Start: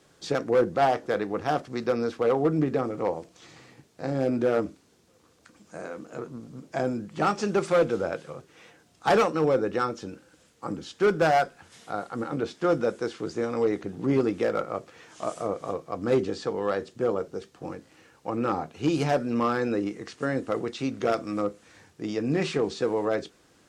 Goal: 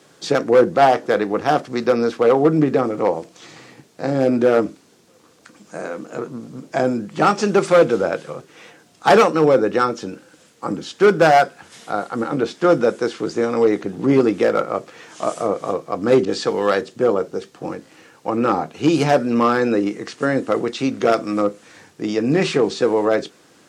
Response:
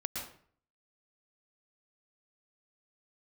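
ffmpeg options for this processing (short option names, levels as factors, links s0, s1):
-filter_complex "[0:a]highpass=140,asettb=1/sr,asplit=3[s0][s1][s2];[s0]atrim=end=16.254[s3];[s1]atrim=start=16.25:end=16.81,asetpts=PTS-STARTPTS,afade=t=in:d=0.004:c=qsin,afade=t=out:st=0.556:d=0.004:c=qsin,adynamicequalizer=threshold=0.00891:dfrequency=1600:dqfactor=0.7:tfrequency=1600:tqfactor=0.7:attack=5:release=100:ratio=0.375:range=3:mode=boostabove:tftype=highshelf[s4];[s2]atrim=start=16.806[s5];[s3][s4]acrossfade=d=0.004:c1=hsin:c2=qsin[s6];[s6][s5]acrossfade=d=0.004:c1=qsin:c2=hsin,volume=2.82"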